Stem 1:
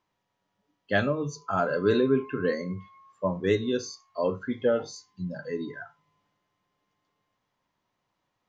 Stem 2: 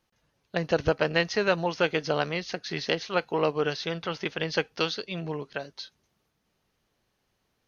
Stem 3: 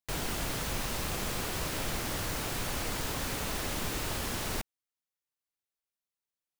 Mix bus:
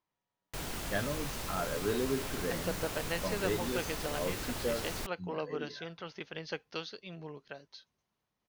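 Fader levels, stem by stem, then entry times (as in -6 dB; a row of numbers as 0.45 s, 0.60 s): -10.0 dB, -12.0 dB, -5.0 dB; 0.00 s, 1.95 s, 0.45 s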